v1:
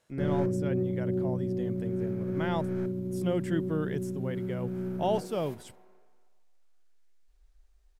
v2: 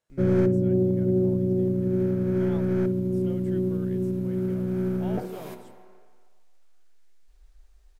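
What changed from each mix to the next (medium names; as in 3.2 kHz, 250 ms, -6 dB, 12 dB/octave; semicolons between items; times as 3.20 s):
speech -12.0 dB; background +7.5 dB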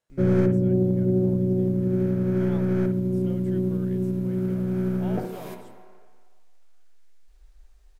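background: send +10.5 dB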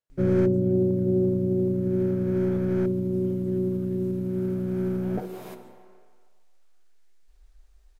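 speech -11.0 dB; reverb: off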